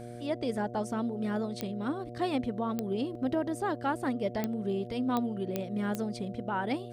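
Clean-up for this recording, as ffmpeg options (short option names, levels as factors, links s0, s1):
-af "adeclick=t=4,bandreject=f=119.4:t=h:w=4,bandreject=f=238.8:t=h:w=4,bandreject=f=358.2:t=h:w=4,bandreject=f=477.6:t=h:w=4,bandreject=f=597:t=h:w=4,bandreject=f=716.4:t=h:w=4"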